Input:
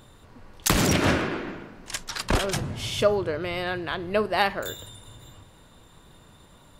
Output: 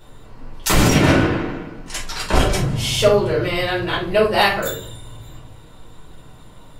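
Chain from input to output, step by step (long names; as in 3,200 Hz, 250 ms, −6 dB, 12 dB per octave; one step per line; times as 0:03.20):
0:02.67–0:04.68: high-shelf EQ 3,000 Hz +8 dB
rectangular room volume 230 cubic metres, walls furnished, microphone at 4.6 metres
level −2.5 dB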